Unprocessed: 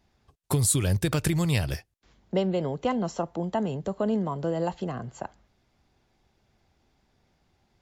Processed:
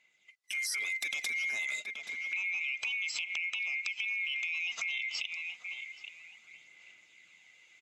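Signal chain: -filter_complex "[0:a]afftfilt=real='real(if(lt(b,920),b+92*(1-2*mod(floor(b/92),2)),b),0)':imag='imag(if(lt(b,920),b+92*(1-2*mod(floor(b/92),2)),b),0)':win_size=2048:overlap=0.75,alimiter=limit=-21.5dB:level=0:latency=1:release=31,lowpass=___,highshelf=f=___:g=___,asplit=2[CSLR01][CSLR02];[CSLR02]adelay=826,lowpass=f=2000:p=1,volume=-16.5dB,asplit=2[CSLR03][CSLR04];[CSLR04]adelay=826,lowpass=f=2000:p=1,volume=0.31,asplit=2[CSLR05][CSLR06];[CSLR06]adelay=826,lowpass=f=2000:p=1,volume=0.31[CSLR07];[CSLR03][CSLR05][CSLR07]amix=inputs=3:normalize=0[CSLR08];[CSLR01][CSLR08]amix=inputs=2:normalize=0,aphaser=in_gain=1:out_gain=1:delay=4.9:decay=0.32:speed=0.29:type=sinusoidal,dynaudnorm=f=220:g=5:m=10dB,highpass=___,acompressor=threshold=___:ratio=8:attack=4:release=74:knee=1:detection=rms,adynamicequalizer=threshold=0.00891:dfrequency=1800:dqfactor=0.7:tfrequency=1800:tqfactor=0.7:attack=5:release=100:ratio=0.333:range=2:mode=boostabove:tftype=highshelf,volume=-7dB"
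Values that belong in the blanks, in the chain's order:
6000, 3100, 11.5, 170, -28dB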